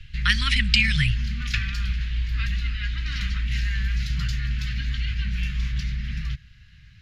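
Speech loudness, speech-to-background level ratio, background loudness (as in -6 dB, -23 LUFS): -21.5 LUFS, 6.5 dB, -28.0 LUFS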